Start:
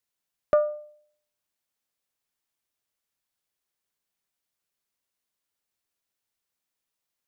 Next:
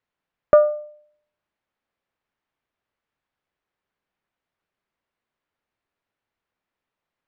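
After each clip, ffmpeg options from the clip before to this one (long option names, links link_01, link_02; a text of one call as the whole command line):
ffmpeg -i in.wav -af "lowpass=2100,volume=8dB" out.wav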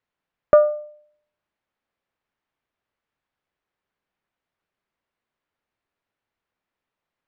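ffmpeg -i in.wav -af anull out.wav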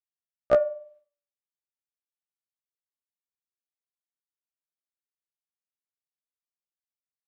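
ffmpeg -i in.wav -af "agate=range=-33dB:threshold=-44dB:ratio=3:detection=peak,bandreject=frequency=289.5:width_type=h:width=4,bandreject=frequency=579:width_type=h:width=4,bandreject=frequency=868.5:width_type=h:width=4,bandreject=frequency=1158:width_type=h:width=4,bandreject=frequency=1447.5:width_type=h:width=4,bandreject=frequency=1737:width_type=h:width=4,bandreject=frequency=2026.5:width_type=h:width=4,bandreject=frequency=2316:width_type=h:width=4,bandreject=frequency=2605.5:width_type=h:width=4,bandreject=frequency=2895:width_type=h:width=4,bandreject=frequency=3184.5:width_type=h:width=4,bandreject=frequency=3474:width_type=h:width=4,bandreject=frequency=3763.5:width_type=h:width=4,afftfilt=real='re*1.73*eq(mod(b,3),0)':imag='im*1.73*eq(mod(b,3),0)':win_size=2048:overlap=0.75" out.wav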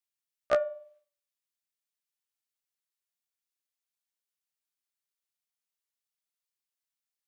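ffmpeg -i in.wav -af "tiltshelf=frequency=880:gain=-8,volume=-3dB" out.wav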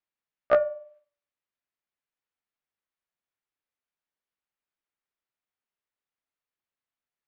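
ffmpeg -i in.wav -af "lowpass=2200,bandreject=frequency=60:width_type=h:width=6,bandreject=frequency=120:width_type=h:width=6,bandreject=frequency=180:width_type=h:width=6,volume=5dB" out.wav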